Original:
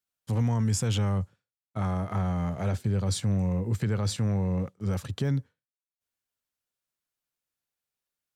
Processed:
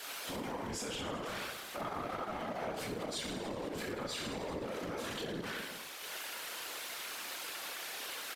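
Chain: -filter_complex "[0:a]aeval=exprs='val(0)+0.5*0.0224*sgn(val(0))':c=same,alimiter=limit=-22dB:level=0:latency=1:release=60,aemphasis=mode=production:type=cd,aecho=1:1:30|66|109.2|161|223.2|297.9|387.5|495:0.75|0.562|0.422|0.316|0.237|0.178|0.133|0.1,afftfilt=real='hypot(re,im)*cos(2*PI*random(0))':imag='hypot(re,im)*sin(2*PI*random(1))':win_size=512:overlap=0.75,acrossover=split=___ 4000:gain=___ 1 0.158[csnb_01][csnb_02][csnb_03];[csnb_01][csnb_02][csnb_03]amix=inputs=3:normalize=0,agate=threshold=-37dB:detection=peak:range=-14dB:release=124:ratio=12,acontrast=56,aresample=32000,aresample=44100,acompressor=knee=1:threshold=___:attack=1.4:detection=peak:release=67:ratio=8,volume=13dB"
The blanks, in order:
300, 0.0708, -48dB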